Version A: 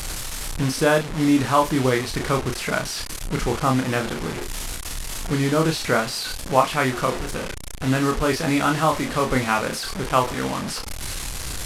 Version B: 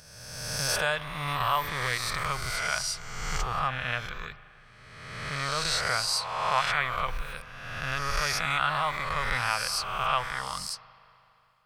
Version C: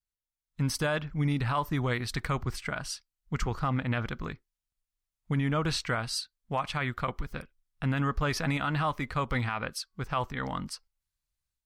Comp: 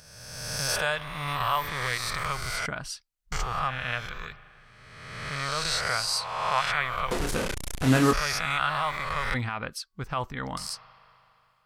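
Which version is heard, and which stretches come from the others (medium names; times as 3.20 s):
B
2.66–3.32 s: from C
7.11–8.13 s: from A
9.34–10.57 s: from C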